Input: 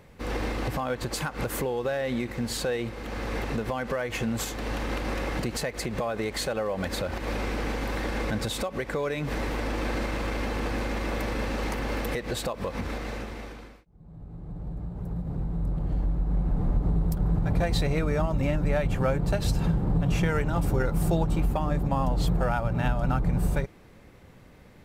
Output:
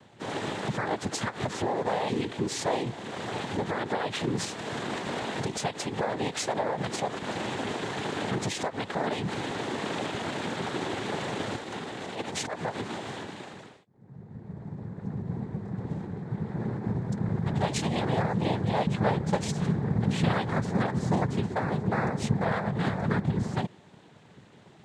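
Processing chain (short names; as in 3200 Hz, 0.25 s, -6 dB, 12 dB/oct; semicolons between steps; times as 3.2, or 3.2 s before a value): 11.55–12.62 negative-ratio compressor -32 dBFS, ratio -0.5; noise vocoder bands 6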